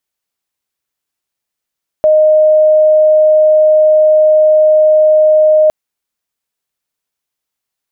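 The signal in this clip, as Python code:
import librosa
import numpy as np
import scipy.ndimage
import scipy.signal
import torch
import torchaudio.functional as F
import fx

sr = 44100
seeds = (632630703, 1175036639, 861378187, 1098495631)

y = 10.0 ** (-4.5 / 20.0) * np.sin(2.0 * np.pi * (618.0 * (np.arange(round(3.66 * sr)) / sr)))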